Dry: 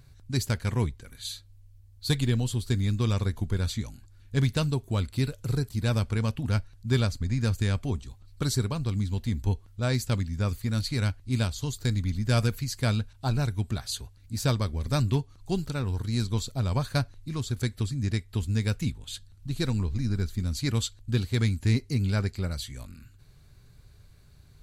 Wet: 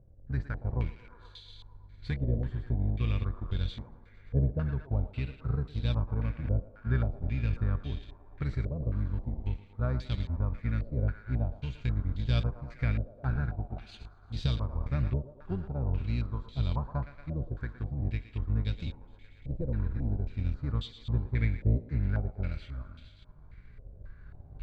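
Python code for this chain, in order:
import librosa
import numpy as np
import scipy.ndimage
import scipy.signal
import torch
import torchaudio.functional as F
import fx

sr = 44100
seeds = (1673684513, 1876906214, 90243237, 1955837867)

p1 = fx.octave_divider(x, sr, octaves=1, level_db=-2.0)
p2 = fx.recorder_agc(p1, sr, target_db=-15.0, rise_db_per_s=5.1, max_gain_db=30)
p3 = fx.low_shelf(p2, sr, hz=77.0, db=7.0)
p4 = p3 + fx.echo_thinned(p3, sr, ms=115, feedback_pct=79, hz=250.0, wet_db=-13.0, dry=0)
p5 = fx.transient(p4, sr, attack_db=5, sustain_db=-3)
p6 = fx.hpss(p5, sr, part='percussive', gain_db=-11)
p7 = fx.filter_held_lowpass(p6, sr, hz=3.7, low_hz=580.0, high_hz=3400.0)
y = p7 * 10.0 ** (-7.5 / 20.0)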